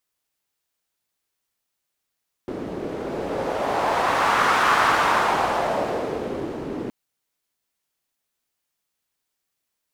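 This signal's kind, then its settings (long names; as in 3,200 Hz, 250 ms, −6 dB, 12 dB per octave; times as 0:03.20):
wind from filtered noise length 4.42 s, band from 330 Hz, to 1,200 Hz, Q 1.9, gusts 1, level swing 12 dB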